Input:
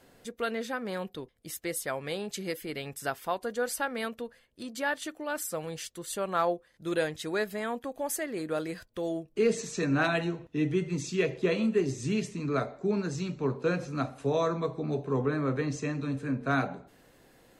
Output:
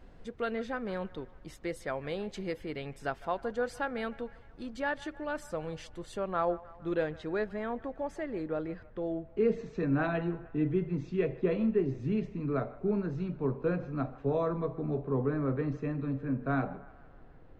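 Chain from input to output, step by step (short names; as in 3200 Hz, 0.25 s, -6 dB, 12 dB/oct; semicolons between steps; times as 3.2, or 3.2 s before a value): added noise brown -52 dBFS; tape spacing loss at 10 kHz 21 dB, from 6.17 s at 10 kHz 33 dB, from 8.47 s at 10 kHz 44 dB; band-limited delay 0.153 s, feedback 59%, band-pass 1200 Hz, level -18 dB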